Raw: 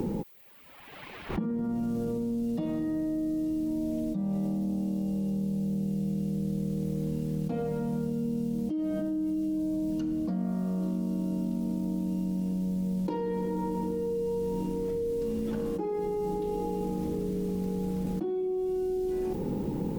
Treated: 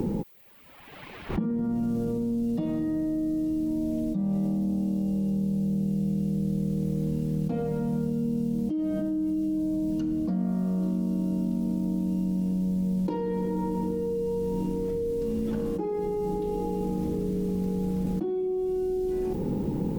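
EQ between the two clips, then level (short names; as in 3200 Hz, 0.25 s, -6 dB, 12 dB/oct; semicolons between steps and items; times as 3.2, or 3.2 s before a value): low shelf 330 Hz +4.5 dB; 0.0 dB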